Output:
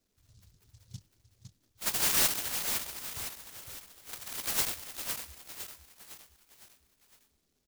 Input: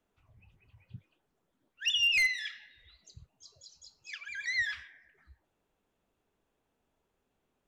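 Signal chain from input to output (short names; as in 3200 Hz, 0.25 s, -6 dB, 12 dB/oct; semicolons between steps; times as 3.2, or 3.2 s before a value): inverse Chebyshev low-pass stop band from 8700 Hz, stop band 60 dB; feedback echo 0.508 s, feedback 46%, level -6.5 dB; noise-modulated delay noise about 5100 Hz, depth 0.37 ms; gain +1.5 dB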